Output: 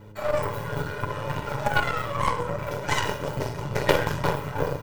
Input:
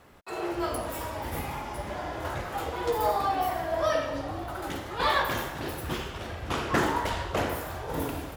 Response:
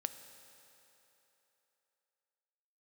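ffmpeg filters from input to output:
-filter_complex "[0:a]equalizer=f=2.2k:w=0.36:g=-8.5,bandreject=f=5.8k:w=9.4,aecho=1:1:3.6:0.72,aecho=1:1:12|75:0.562|0.398,asplit=2[a][b];[b]acompressor=threshold=-35dB:ratio=6,volume=-1dB[c];[a][c]amix=inputs=2:normalize=0,aeval=exprs='val(0)+0.00562*(sin(2*PI*60*n/s)+sin(2*PI*2*60*n/s)/2+sin(2*PI*3*60*n/s)/3+sin(2*PI*4*60*n/s)/4+sin(2*PI*5*60*n/s)/5)':c=same,aeval=exprs='0.316*(cos(1*acos(clip(val(0)/0.316,-1,1)))-cos(1*PI/2))+0.0794*(cos(3*acos(clip(val(0)/0.316,-1,1)))-cos(3*PI/2))+0.0282*(cos(4*acos(clip(val(0)/0.316,-1,1)))-cos(4*PI/2))':c=same,acrossover=split=580|2100[d][e][f];[d]acontrast=36[g];[g][e][f]amix=inputs=3:normalize=0,asetrate=76440,aresample=44100,volume=6dB"

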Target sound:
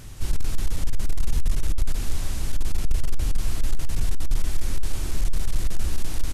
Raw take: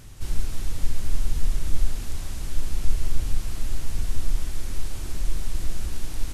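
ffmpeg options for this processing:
-filter_complex "[0:a]asoftclip=type=hard:threshold=-17dB,asplit=2[a][b];[b]adelay=332.4,volume=-17dB,highshelf=f=4k:g=-7.48[c];[a][c]amix=inputs=2:normalize=0,volume=4dB"

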